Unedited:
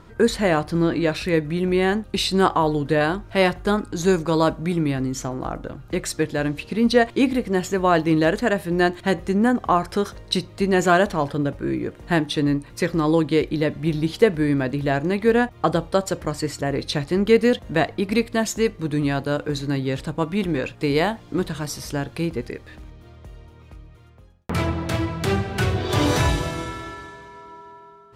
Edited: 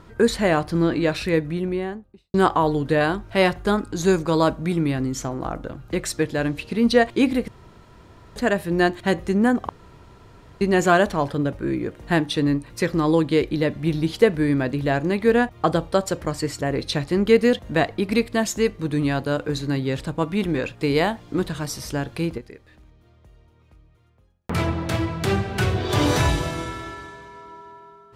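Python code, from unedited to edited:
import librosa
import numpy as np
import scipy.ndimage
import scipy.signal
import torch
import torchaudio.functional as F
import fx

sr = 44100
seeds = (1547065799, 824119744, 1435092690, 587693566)

y = fx.studio_fade_out(x, sr, start_s=1.23, length_s=1.11)
y = fx.edit(y, sr, fx.room_tone_fill(start_s=7.48, length_s=0.88),
    fx.room_tone_fill(start_s=9.69, length_s=0.92),
    fx.fade_down_up(start_s=22.21, length_s=2.4, db=-10.0, fade_s=0.17, curve='log'), tone=tone)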